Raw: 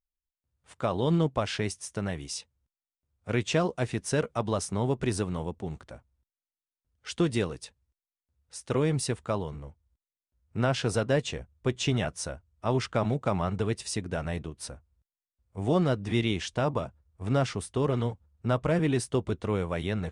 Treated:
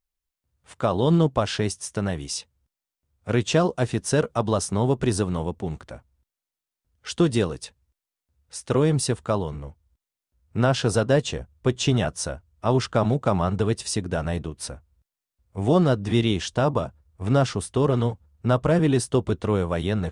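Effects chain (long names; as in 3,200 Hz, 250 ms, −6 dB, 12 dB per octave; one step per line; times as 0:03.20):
dynamic equaliser 2,200 Hz, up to −7 dB, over −52 dBFS, Q 2.8
level +6 dB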